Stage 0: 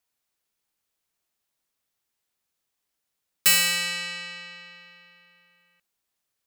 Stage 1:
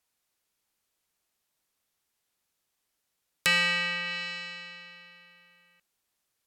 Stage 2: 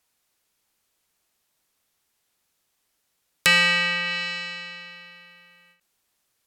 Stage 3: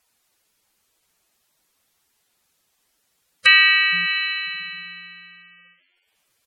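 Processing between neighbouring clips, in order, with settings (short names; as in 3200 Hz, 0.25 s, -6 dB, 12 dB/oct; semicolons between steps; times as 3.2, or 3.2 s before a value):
treble ducked by the level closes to 2600 Hz, closed at -27 dBFS; gain +2 dB
ending taper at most 150 dB/s; gain +6.5 dB
frequency-shifting echo 0.153 s, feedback 62%, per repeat +91 Hz, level -17 dB; spectral gate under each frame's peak -10 dB strong; gain +6 dB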